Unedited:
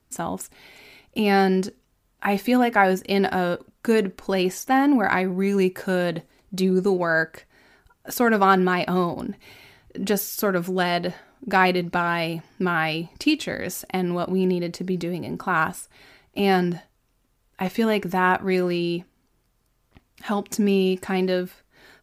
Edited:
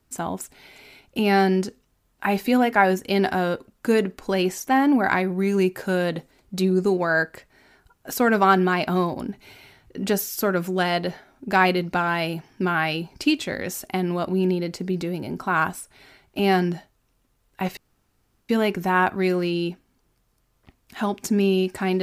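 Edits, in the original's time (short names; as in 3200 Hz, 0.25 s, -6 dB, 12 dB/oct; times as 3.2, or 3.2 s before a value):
17.77 insert room tone 0.72 s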